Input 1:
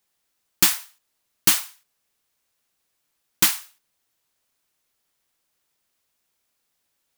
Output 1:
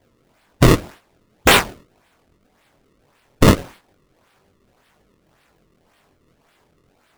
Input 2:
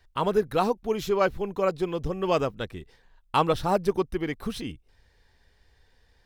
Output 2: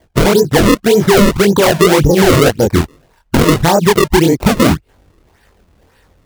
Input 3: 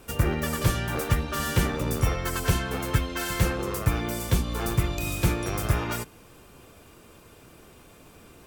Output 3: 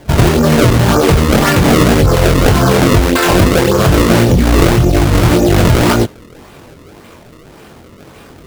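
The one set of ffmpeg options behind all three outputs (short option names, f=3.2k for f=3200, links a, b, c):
-af "highpass=f=70:p=1,afwtdn=0.0355,acompressor=threshold=-31dB:ratio=3,acrusher=samples=32:mix=1:aa=0.000001:lfo=1:lforange=51.2:lforate=1.8,flanger=delay=20:depth=5.2:speed=2,alimiter=level_in=35dB:limit=-1dB:release=50:level=0:latency=1,volume=-1dB"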